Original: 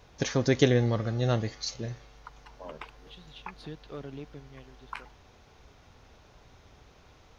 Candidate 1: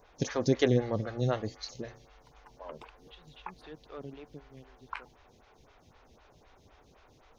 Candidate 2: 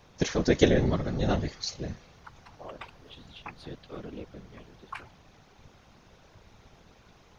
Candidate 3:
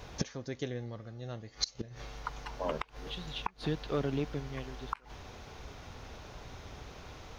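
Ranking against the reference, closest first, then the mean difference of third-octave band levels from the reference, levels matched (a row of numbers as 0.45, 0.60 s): 2, 1, 3; 2.5, 3.5, 12.0 dB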